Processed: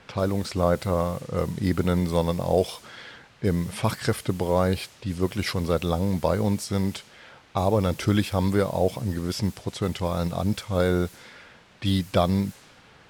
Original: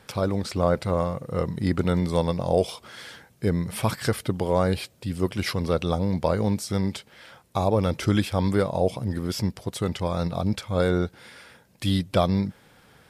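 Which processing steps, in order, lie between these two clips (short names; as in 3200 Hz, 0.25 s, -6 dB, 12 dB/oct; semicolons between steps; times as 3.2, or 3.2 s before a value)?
requantised 8-bit, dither triangular; low-pass opened by the level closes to 2500 Hz, open at -22 dBFS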